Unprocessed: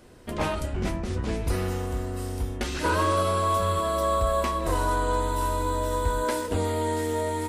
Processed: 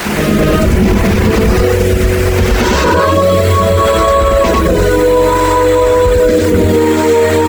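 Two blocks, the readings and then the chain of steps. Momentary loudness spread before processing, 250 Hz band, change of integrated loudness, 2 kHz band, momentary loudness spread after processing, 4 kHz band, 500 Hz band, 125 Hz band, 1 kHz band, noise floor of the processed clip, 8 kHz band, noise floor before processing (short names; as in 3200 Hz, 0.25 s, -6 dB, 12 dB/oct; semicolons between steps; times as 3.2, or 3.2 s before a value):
7 LU, +19.5 dB, +16.5 dB, +17.0 dB, 2 LU, +16.0 dB, +19.0 dB, +16.5 dB, +12.5 dB, -12 dBFS, +14.0 dB, -33 dBFS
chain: band noise 330–2400 Hz -40 dBFS; rotary speaker horn 0.65 Hz; dynamic EQ 460 Hz, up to +6 dB, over -43 dBFS, Q 3; steep low-pass 8100 Hz 72 dB/oct; on a send: loudspeakers at several distances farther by 20 m -9 dB, 34 m 0 dB; on the sum: bit-crush 7-bit; bell 200 Hz +11.5 dB 0.36 oct; reverb removal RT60 0.79 s; reverse echo 0.224 s -9 dB; maximiser +23.5 dB; gain -1 dB; AAC 192 kbps 48000 Hz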